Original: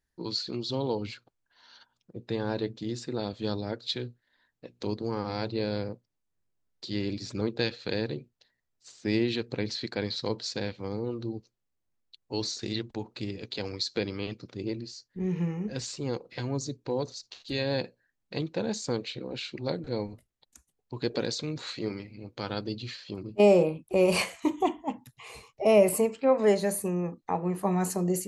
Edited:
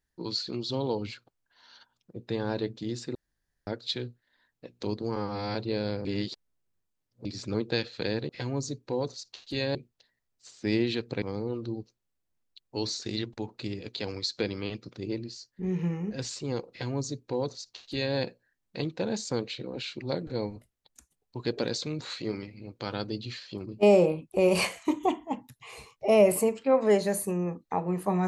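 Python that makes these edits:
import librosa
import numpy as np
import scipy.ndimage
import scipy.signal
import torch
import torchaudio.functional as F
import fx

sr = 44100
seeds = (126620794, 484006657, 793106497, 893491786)

y = fx.edit(x, sr, fx.room_tone_fill(start_s=3.15, length_s=0.52),
    fx.stretch_span(start_s=5.16, length_s=0.26, factor=1.5),
    fx.reverse_span(start_s=5.92, length_s=1.2),
    fx.cut(start_s=9.63, length_s=1.16),
    fx.duplicate(start_s=16.27, length_s=1.46, to_s=8.16), tone=tone)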